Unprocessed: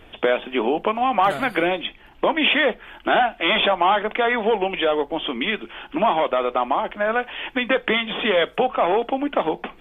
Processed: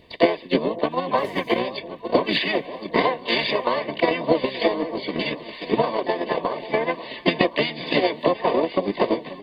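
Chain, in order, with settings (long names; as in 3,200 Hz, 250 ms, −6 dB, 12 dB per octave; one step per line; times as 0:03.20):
pitch-shifted copies added −7 semitones −1 dB, +3 semitones −15 dB, +5 semitones −1 dB
Butterworth band-reject 1,300 Hz, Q 2.6
notch comb filter 790 Hz
speed change +4%
on a send: delay that swaps between a low-pass and a high-pass 535 ms, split 1,000 Hz, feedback 76%, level −9 dB
on the sum: transient designer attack +11 dB, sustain −1 dB
level −8.5 dB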